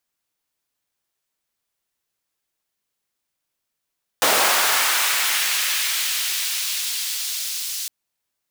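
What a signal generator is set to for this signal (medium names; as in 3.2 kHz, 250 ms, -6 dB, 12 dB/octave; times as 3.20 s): swept filtered noise pink, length 3.66 s highpass, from 460 Hz, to 4.6 kHz, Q 1, linear, gain ramp -8 dB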